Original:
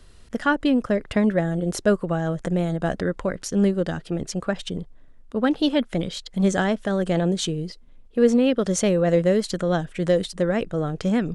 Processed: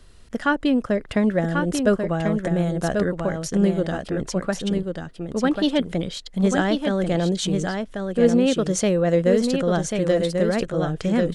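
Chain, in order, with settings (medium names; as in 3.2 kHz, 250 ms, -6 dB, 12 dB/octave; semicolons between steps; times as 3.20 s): delay 1090 ms -5 dB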